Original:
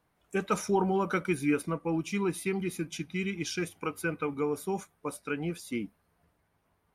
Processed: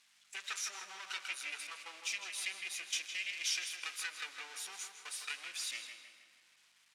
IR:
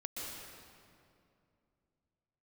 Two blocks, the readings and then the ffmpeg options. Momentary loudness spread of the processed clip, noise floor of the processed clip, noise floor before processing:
9 LU, −69 dBFS, −74 dBFS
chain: -filter_complex "[0:a]aeval=exprs='val(0)+0.5*0.0119*sgn(val(0))':channel_layout=same,aemphasis=mode=production:type=cd,agate=range=-20dB:threshold=-36dB:ratio=16:detection=peak,highshelf=frequency=6000:gain=-10.5,acompressor=threshold=-33dB:ratio=4,aeval=exprs='max(val(0),0)':channel_layout=same,aeval=exprs='val(0)+0.00282*(sin(2*PI*50*n/s)+sin(2*PI*2*50*n/s)/2+sin(2*PI*3*50*n/s)/3+sin(2*PI*4*50*n/s)/4+sin(2*PI*5*50*n/s)/5)':channel_layout=same,asuperpass=centerf=4500:order=4:qfactor=0.71,asplit=2[link_01][link_02];[link_02]adelay=159,lowpass=frequency=3200:poles=1,volume=-6dB,asplit=2[link_03][link_04];[link_04]adelay=159,lowpass=frequency=3200:poles=1,volume=0.52,asplit=2[link_05][link_06];[link_06]adelay=159,lowpass=frequency=3200:poles=1,volume=0.52,asplit=2[link_07][link_08];[link_08]adelay=159,lowpass=frequency=3200:poles=1,volume=0.52,asplit=2[link_09][link_10];[link_10]adelay=159,lowpass=frequency=3200:poles=1,volume=0.52,asplit=2[link_11][link_12];[link_12]adelay=159,lowpass=frequency=3200:poles=1,volume=0.52[link_13];[link_01][link_03][link_05][link_07][link_09][link_11][link_13]amix=inputs=7:normalize=0,asplit=2[link_14][link_15];[1:a]atrim=start_sample=2205[link_16];[link_15][link_16]afir=irnorm=-1:irlink=0,volume=-12dB[link_17];[link_14][link_17]amix=inputs=2:normalize=0,volume=8dB"

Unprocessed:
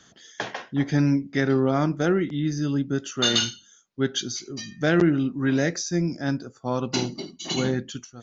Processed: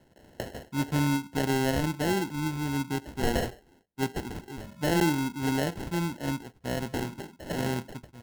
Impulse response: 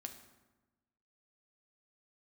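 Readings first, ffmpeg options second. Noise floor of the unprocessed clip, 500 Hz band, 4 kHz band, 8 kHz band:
−56 dBFS, −5.5 dB, −10.0 dB, can't be measured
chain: -af "acrusher=samples=37:mix=1:aa=0.000001,equalizer=frequency=70:width_type=o:width=0.77:gain=5.5,volume=-5.5dB"

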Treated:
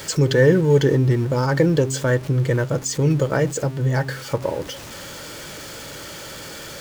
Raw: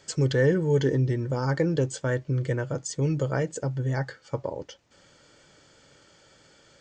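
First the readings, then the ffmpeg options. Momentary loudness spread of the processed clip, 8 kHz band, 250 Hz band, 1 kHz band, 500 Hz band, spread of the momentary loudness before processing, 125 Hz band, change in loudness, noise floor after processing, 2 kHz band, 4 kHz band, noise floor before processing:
18 LU, +9.5 dB, +7.0 dB, +8.0 dB, +7.5 dB, 11 LU, +6.5 dB, +7.0 dB, −36 dBFS, +8.0 dB, +10.5 dB, −58 dBFS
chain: -af "aeval=exprs='val(0)+0.5*0.0126*sgn(val(0))':channel_layout=same,bandreject=frequency=740:width=18,bandreject=frequency=133.7:width_type=h:width=4,bandreject=frequency=267.4:width_type=h:width=4,bandreject=frequency=401.1:width_type=h:width=4,volume=7dB"

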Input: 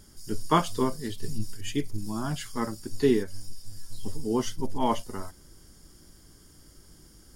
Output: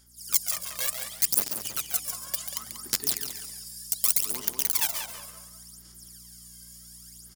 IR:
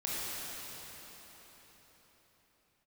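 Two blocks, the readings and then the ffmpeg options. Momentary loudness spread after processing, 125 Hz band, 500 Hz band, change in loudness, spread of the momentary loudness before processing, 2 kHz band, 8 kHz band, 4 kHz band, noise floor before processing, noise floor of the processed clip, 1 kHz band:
22 LU, −16.5 dB, −18.0 dB, +3.5 dB, 17 LU, +1.5 dB, +14.5 dB, +6.0 dB, −55 dBFS, −50 dBFS, −13.0 dB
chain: -filter_complex "[0:a]lowshelf=frequency=160:gain=5,acrossover=split=180|650[link_01][link_02][link_03];[link_01]acompressor=threshold=-23dB:ratio=4[link_04];[link_02]acompressor=threshold=-39dB:ratio=4[link_05];[link_03]acompressor=threshold=-43dB:ratio=4[link_06];[link_04][link_05][link_06]amix=inputs=3:normalize=0,aeval=exprs='(mod(11.2*val(0)+1,2)-1)/11.2':channel_layout=same,asplit=2[link_07][link_08];[link_08]aecho=0:1:139|278|417|556:0.422|0.122|0.0355|0.0103[link_09];[link_07][link_09]amix=inputs=2:normalize=0,aphaser=in_gain=1:out_gain=1:delay=1.9:decay=0.76:speed=0.68:type=sinusoidal,aderivative,aeval=exprs='val(0)+0.00112*(sin(2*PI*60*n/s)+sin(2*PI*2*60*n/s)/2+sin(2*PI*3*60*n/s)/3+sin(2*PI*4*60*n/s)/4+sin(2*PI*5*60*n/s)/5)':channel_layout=same,asplit=2[link_10][link_11];[link_11]adelay=189,lowpass=frequency=3900:poles=1,volume=-6dB,asplit=2[link_12][link_13];[link_13]adelay=189,lowpass=frequency=3900:poles=1,volume=0.23,asplit=2[link_14][link_15];[link_15]adelay=189,lowpass=frequency=3900:poles=1,volume=0.23[link_16];[link_12][link_14][link_16]amix=inputs=3:normalize=0[link_17];[link_10][link_17]amix=inputs=2:normalize=0,dynaudnorm=framelen=140:gausssize=3:maxgain=8dB,bandreject=frequency=150.6:width_type=h:width=4,bandreject=frequency=301.2:width_type=h:width=4,bandreject=frequency=451.8:width_type=h:width=4,bandreject=frequency=602.4:width_type=h:width=4,bandreject=frequency=753:width_type=h:width=4,bandreject=frequency=903.6:width_type=h:width=4,volume=-2.5dB"

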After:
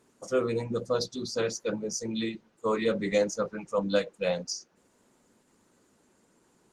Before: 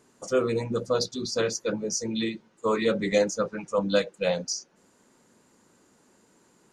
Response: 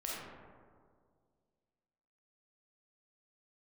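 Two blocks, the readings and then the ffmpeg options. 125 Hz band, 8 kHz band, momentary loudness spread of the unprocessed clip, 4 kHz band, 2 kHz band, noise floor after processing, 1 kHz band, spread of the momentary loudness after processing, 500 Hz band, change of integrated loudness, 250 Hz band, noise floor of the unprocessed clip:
−2.5 dB, −4.5 dB, 6 LU, −4.0 dB, −3.5 dB, −67 dBFS, −3.0 dB, 6 LU, −2.5 dB, −3.0 dB, −2.5 dB, −63 dBFS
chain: -af "volume=-2.5dB" -ar 48000 -c:a libopus -b:a 20k

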